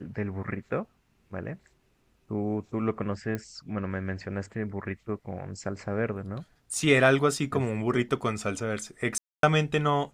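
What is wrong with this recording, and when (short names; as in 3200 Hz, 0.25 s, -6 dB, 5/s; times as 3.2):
3.35 pop -19 dBFS
9.18–9.43 gap 0.252 s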